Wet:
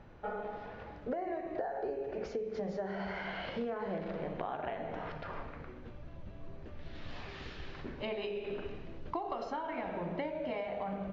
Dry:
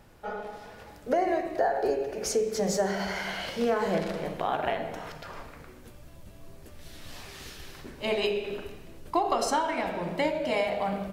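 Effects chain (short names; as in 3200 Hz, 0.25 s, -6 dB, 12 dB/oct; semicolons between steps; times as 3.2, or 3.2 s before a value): 6.95–9.52 high shelf 5100 Hz +8.5 dB; compressor 6:1, threshold -35 dBFS, peak gain reduction 13.5 dB; air absorption 370 m; gain +1.5 dB; MP2 128 kbps 16000 Hz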